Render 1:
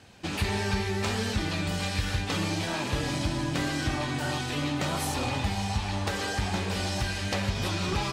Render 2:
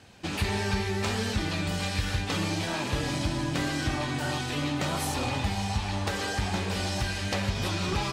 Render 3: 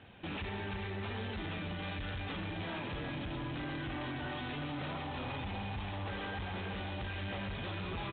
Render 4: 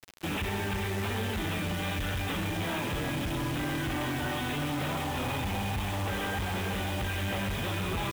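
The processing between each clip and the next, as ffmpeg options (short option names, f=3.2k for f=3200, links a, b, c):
-af anull
-af "alimiter=level_in=3.5dB:limit=-24dB:level=0:latency=1,volume=-3.5dB,aecho=1:1:348:0.422,aresample=8000,asoftclip=type=hard:threshold=-34dB,aresample=44100,volume=-2dB"
-af "acrusher=bits=7:mix=0:aa=0.000001,volume=7.5dB"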